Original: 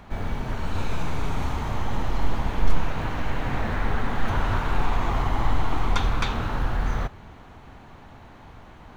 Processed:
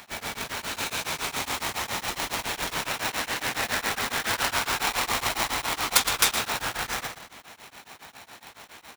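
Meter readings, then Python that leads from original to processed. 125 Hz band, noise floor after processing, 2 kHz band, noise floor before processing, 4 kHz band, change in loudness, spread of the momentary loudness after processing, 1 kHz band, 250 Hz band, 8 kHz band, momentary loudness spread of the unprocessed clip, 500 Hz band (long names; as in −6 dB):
−15.5 dB, −53 dBFS, +5.5 dB, −46 dBFS, +11.0 dB, +1.5 dB, 23 LU, 0.0 dB, −8.0 dB, can't be measured, 21 LU, −2.0 dB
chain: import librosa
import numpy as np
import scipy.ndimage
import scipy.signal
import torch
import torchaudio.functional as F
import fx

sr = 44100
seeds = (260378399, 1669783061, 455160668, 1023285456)

p1 = fx.tracing_dist(x, sr, depth_ms=0.24)
p2 = fx.echo_feedback(p1, sr, ms=115, feedback_pct=27, wet_db=-8)
p3 = fx.sample_hold(p2, sr, seeds[0], rate_hz=1600.0, jitter_pct=0)
p4 = p2 + (p3 * librosa.db_to_amplitude(-5.0))
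p5 = fx.highpass(p4, sr, hz=1200.0, slope=6)
p6 = fx.high_shelf(p5, sr, hz=2200.0, db=10.5)
p7 = p6 * np.abs(np.cos(np.pi * 7.2 * np.arange(len(p6)) / sr))
y = p7 * librosa.db_to_amplitude(4.5)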